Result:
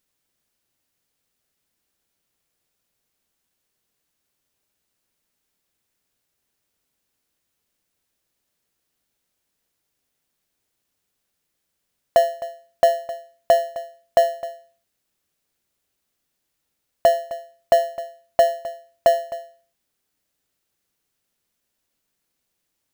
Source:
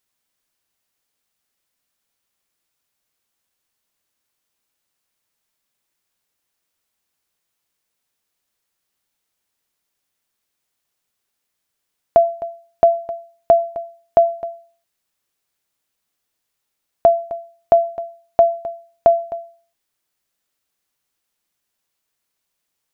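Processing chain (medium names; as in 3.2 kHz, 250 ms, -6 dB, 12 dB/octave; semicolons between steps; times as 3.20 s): bass shelf 420 Hz -11 dB; in parallel at -10.5 dB: sample-rate reducer 1.2 kHz, jitter 0%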